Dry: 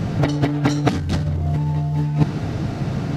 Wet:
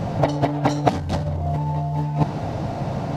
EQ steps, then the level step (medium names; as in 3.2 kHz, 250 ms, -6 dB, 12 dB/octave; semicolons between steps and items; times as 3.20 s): high-order bell 730 Hz +9.5 dB 1.2 oct; -3.5 dB